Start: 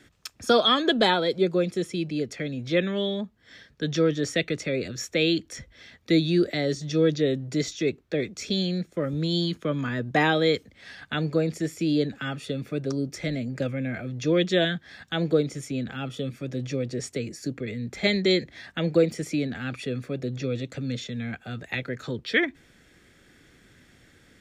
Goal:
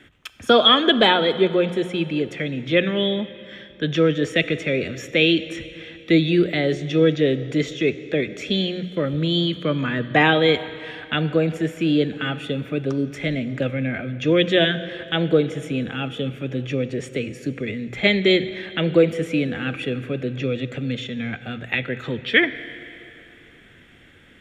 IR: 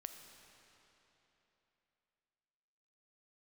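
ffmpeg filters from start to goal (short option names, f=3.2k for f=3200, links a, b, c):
-filter_complex "[0:a]highshelf=f=3.8k:t=q:w=3:g=-7,bandreject=f=60:t=h:w=6,bandreject=f=120:t=h:w=6,bandreject=f=180:t=h:w=6,asplit=2[a][b];[1:a]atrim=start_sample=2205,asetrate=52920,aresample=44100[c];[b][c]afir=irnorm=-1:irlink=0,volume=4dB[d];[a][d]amix=inputs=2:normalize=0"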